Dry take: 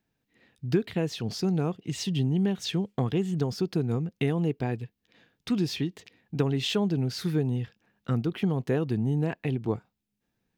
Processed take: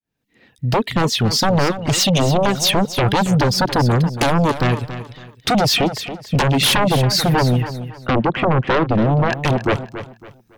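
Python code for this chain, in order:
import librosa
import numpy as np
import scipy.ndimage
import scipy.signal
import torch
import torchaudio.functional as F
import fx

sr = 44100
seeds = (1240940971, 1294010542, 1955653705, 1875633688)

p1 = fx.fade_in_head(x, sr, length_s=1.46)
p2 = fx.lowpass(p1, sr, hz=2000.0, slope=12, at=(7.63, 9.33))
p3 = fx.dereverb_blind(p2, sr, rt60_s=1.7)
p4 = fx.fold_sine(p3, sr, drive_db=17, ceiling_db=-12.0)
y = p4 + fx.echo_feedback(p4, sr, ms=278, feedback_pct=30, wet_db=-12, dry=0)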